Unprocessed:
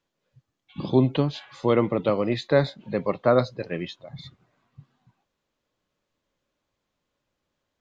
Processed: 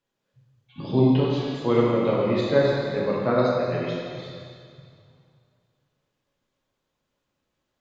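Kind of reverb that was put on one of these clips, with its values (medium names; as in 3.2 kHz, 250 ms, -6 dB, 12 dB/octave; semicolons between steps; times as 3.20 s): plate-style reverb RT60 2.2 s, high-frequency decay 0.95×, DRR -5.5 dB; trim -5.5 dB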